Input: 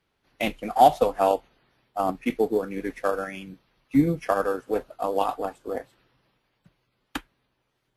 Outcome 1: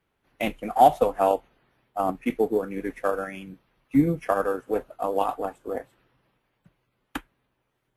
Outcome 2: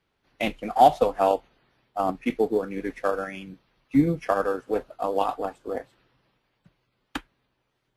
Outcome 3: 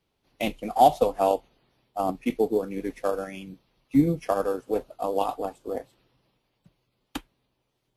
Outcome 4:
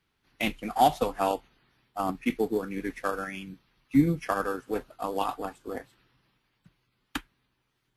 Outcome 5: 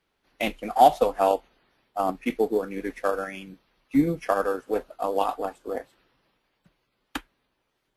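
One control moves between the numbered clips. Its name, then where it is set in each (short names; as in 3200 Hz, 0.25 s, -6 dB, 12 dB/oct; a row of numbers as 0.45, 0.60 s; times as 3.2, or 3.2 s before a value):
bell, frequency: 4700, 16000, 1600, 580, 110 Hz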